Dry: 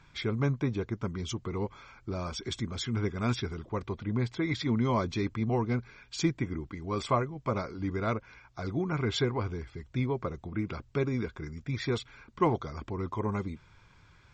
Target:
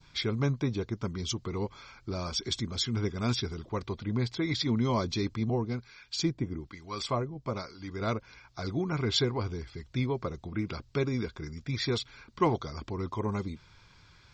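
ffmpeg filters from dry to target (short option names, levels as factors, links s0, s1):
-filter_complex "[0:a]adynamicequalizer=threshold=0.00398:dfrequency=1800:dqfactor=0.82:tfrequency=1800:tqfactor=0.82:attack=5:release=100:ratio=0.375:range=2:mode=cutabove:tftype=bell,asettb=1/sr,asplit=3[s0][s1][s2];[s0]atrim=end=5.504[s3];[s1]atrim=start=5.5:end=8,asetpts=PTS-STARTPTS,afade=t=in:d=0.004:c=qsin,afade=t=out:st=2.496:d=0.004:c=qsin,acrossover=split=890[s4][s5];[s4]aeval=exprs='val(0)*(1-0.7/2+0.7/2*cos(2*PI*1.1*n/s))':c=same[s6];[s5]aeval=exprs='val(0)*(1-0.7/2-0.7/2*cos(2*PI*1.1*n/s))':c=same[s7];[s6][s7]amix=inputs=2:normalize=0[s8];[s2]atrim=start=7.996[s9];[s3][s8]acrossfade=d=0.004:c1=hsin:c2=qsin[s10];[s10][s9]acrossfade=d=0.004:c1=qsin:c2=hsin,equalizer=f=4600:w=1.4:g=10"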